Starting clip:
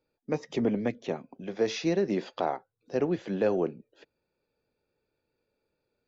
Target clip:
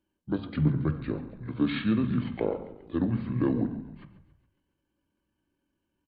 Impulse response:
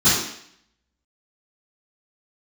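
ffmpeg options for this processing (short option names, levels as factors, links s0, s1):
-filter_complex "[0:a]asplit=2[s0][s1];[1:a]atrim=start_sample=2205,lowpass=3700[s2];[s1][s2]afir=irnorm=-1:irlink=0,volume=0.0422[s3];[s0][s3]amix=inputs=2:normalize=0,asetrate=28595,aresample=44100,atempo=1.54221,asplit=2[s4][s5];[s5]asplit=5[s6][s7][s8][s9][s10];[s6]adelay=138,afreqshift=-32,volume=0.15[s11];[s7]adelay=276,afreqshift=-64,volume=0.0851[s12];[s8]adelay=414,afreqshift=-96,volume=0.0484[s13];[s9]adelay=552,afreqshift=-128,volume=0.0279[s14];[s10]adelay=690,afreqshift=-160,volume=0.0158[s15];[s11][s12][s13][s14][s15]amix=inputs=5:normalize=0[s16];[s4][s16]amix=inputs=2:normalize=0"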